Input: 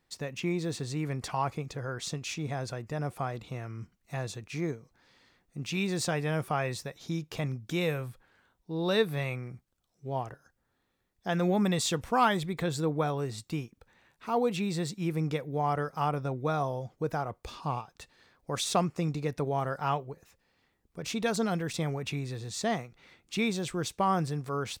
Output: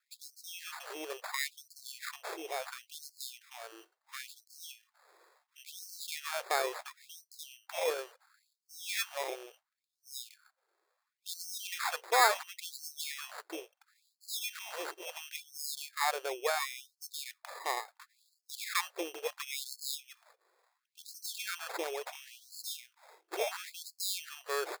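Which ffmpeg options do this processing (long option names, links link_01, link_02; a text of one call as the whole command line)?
ffmpeg -i in.wav -af "acrusher=samples=15:mix=1:aa=0.000001,afftfilt=real='re*gte(b*sr/1024,310*pow(4200/310,0.5+0.5*sin(2*PI*0.72*pts/sr)))':imag='im*gte(b*sr/1024,310*pow(4200/310,0.5+0.5*sin(2*PI*0.72*pts/sr)))':win_size=1024:overlap=0.75" out.wav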